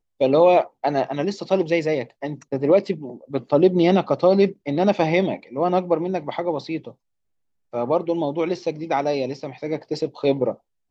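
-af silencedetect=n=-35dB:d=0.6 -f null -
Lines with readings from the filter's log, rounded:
silence_start: 6.91
silence_end: 7.74 | silence_duration: 0.83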